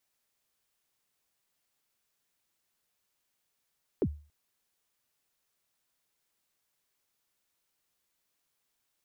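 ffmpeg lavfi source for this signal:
ffmpeg -f lavfi -i "aevalsrc='0.0891*pow(10,-3*t/0.37)*sin(2*PI*(480*0.059/log(74/480)*(exp(log(74/480)*min(t,0.059)/0.059)-1)+74*max(t-0.059,0)))':duration=0.28:sample_rate=44100" out.wav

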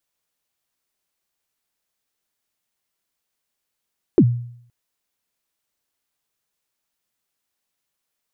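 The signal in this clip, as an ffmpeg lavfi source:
ffmpeg -f lavfi -i "aevalsrc='0.501*pow(10,-3*t/0.64)*sin(2*PI*(420*0.06/log(120/420)*(exp(log(120/420)*min(t,0.06)/0.06)-1)+120*max(t-0.06,0)))':duration=0.52:sample_rate=44100" out.wav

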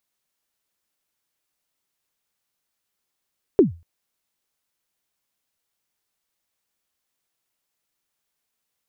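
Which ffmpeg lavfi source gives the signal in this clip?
ffmpeg -f lavfi -i "aevalsrc='0.501*pow(10,-3*t/0.3)*sin(2*PI*(440*0.133/log(84/440)*(exp(log(84/440)*min(t,0.133)/0.133)-1)+84*max(t-0.133,0)))':duration=0.24:sample_rate=44100" out.wav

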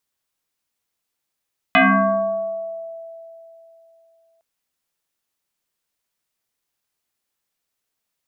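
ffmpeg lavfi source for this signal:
ffmpeg -f lavfi -i "aevalsrc='0.355*pow(10,-3*t/3.16)*sin(2*PI*661*t+4.7*pow(10,-3*t/1.4)*sin(2*PI*0.7*661*t))':duration=2.66:sample_rate=44100" out.wav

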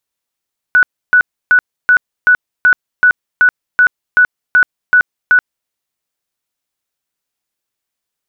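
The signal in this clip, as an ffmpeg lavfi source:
ffmpeg -f lavfi -i "aevalsrc='0.596*sin(2*PI*1480*mod(t,0.38))*lt(mod(t,0.38),117/1480)':duration=4.94:sample_rate=44100" out.wav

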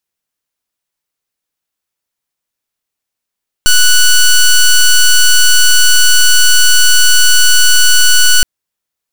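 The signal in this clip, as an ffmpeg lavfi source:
ffmpeg -f lavfi -i "aevalsrc='0.531*(2*lt(mod(1480*t,1),0.1)-1)':duration=4.77:sample_rate=44100" out.wav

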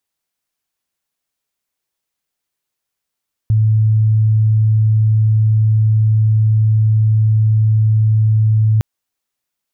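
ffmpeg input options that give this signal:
ffmpeg -f lavfi -i "sine=frequency=109:duration=5.31:sample_rate=44100,volume=9.06dB" out.wav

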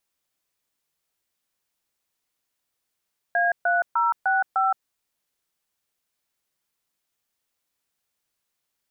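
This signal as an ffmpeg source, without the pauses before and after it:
ffmpeg -f lavfi -i "aevalsrc='0.0891*clip(min(mod(t,0.302),0.169-mod(t,0.302))/0.002,0,1)*(eq(floor(t/0.302),0)*(sin(2*PI*697*mod(t,0.302))+sin(2*PI*1633*mod(t,0.302)))+eq(floor(t/0.302),1)*(sin(2*PI*697*mod(t,0.302))+sin(2*PI*1477*mod(t,0.302)))+eq(floor(t/0.302),2)*(sin(2*PI*941*mod(t,0.302))+sin(2*PI*1336*mod(t,0.302)))+eq(floor(t/0.302),3)*(sin(2*PI*770*mod(t,0.302))+sin(2*PI*1477*mod(t,0.302)))+eq(floor(t/0.302),4)*(sin(2*PI*770*mod(t,0.302))+sin(2*PI*1336*mod(t,0.302))))':duration=1.51:sample_rate=44100" out.wav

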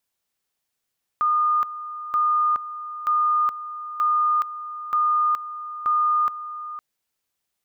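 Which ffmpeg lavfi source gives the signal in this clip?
ffmpeg -f lavfi -i "aevalsrc='pow(10,(-17-13.5*gte(mod(t,0.93),0.42))/20)*sin(2*PI*1220*t)':duration=5.58:sample_rate=44100" out.wav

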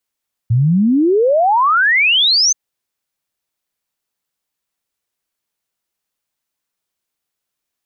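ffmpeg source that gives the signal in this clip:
ffmpeg -f lavfi -i "aevalsrc='0.335*clip(min(t,2.03-t)/0.01,0,1)*sin(2*PI*110*2.03/log(6400/110)*(exp(log(6400/110)*t/2.03)-1))':duration=2.03:sample_rate=44100" out.wav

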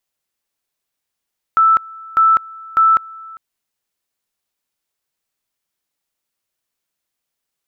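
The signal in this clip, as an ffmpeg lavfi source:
ffmpeg -f lavfi -i "aevalsrc='pow(10,(-8-23.5*gte(mod(t,0.6),0.2))/20)*sin(2*PI*1320*t)':duration=1.8:sample_rate=44100" out.wav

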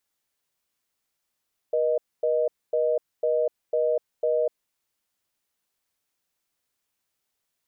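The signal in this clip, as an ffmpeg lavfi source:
ffmpeg -f lavfi -i "aevalsrc='0.0708*(sin(2*PI*480*t)+sin(2*PI*620*t))*clip(min(mod(t,0.5),0.25-mod(t,0.5))/0.005,0,1)':duration=2.76:sample_rate=44100" out.wav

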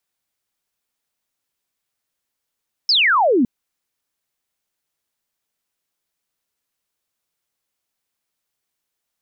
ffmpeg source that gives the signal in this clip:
ffmpeg -f lavfi -i "aevalsrc='0.251*clip(t/0.002,0,1)*clip((0.56-t)/0.002,0,1)*sin(2*PI*5400*0.56/log(220/5400)*(exp(log(220/5400)*t/0.56)-1))':duration=0.56:sample_rate=44100" out.wav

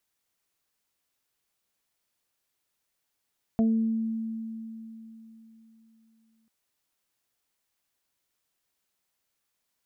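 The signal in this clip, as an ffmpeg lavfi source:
ffmpeg -f lavfi -i "aevalsrc='0.112*pow(10,-3*t/3.65)*sin(2*PI*224*t)+0.0251*pow(10,-3*t/0.79)*sin(2*PI*448*t)+0.0398*pow(10,-3*t/0.2)*sin(2*PI*672*t)':duration=2.89:sample_rate=44100" out.wav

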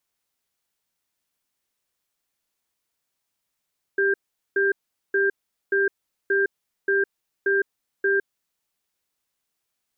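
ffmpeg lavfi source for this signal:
ffmpeg -f lavfi -i "aevalsrc='0.0944*(sin(2*PI*394*t)+sin(2*PI*1590*t))*clip(min(mod(t,0.58),0.16-mod(t,0.58))/0.005,0,1)':duration=4.53:sample_rate=44100" out.wav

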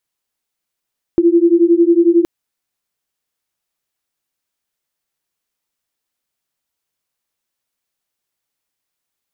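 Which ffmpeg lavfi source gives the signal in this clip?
ffmpeg -f lavfi -i "aevalsrc='0.282*(sin(2*PI*335*t)+sin(2*PI*346*t))':duration=1.07:sample_rate=44100" out.wav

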